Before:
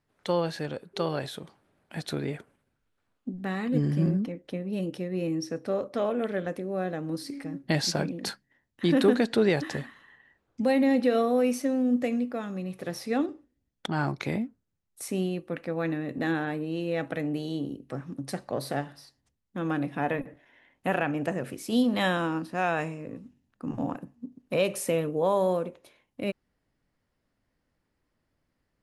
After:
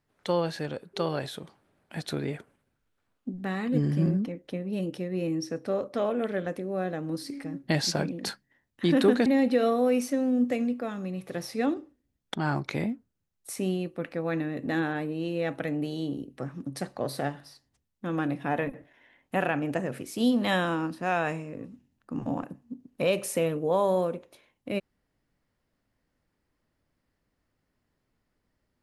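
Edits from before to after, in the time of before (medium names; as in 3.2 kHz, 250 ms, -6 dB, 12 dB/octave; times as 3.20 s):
9.26–10.78 s: delete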